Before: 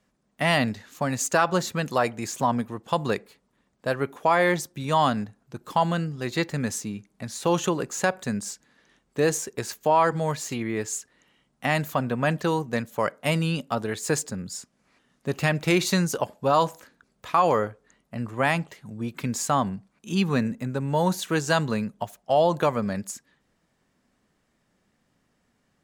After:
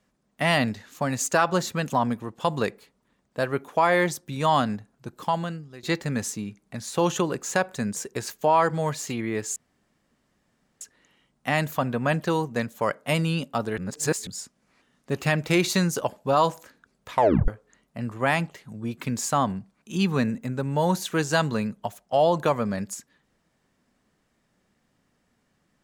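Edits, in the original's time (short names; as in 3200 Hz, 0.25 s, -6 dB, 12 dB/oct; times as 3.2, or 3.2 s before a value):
1.9–2.38 cut
5.55–6.31 fade out, to -17.5 dB
8.44–9.38 cut
10.98 insert room tone 1.25 s
13.95–14.44 reverse
17.29 tape stop 0.36 s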